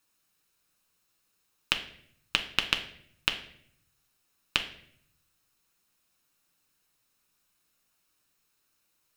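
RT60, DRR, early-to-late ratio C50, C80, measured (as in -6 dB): 0.65 s, 4.5 dB, 11.0 dB, 14.5 dB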